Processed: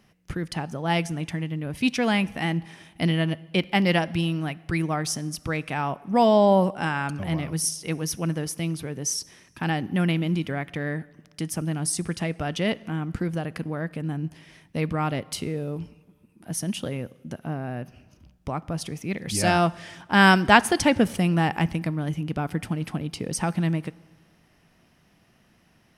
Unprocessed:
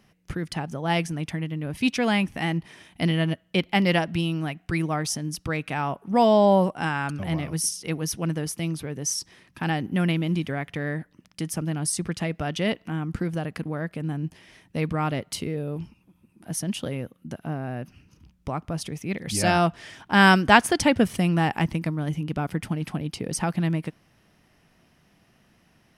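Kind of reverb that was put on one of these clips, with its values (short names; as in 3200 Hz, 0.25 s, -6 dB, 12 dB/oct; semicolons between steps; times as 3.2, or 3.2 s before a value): plate-style reverb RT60 1.4 s, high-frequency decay 0.8×, DRR 20 dB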